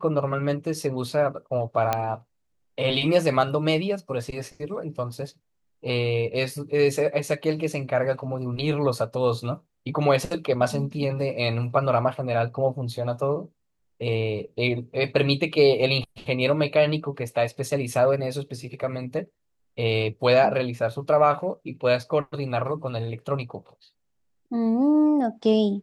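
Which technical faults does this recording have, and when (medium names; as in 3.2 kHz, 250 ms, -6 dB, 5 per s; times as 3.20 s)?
1.93 s: pop -9 dBFS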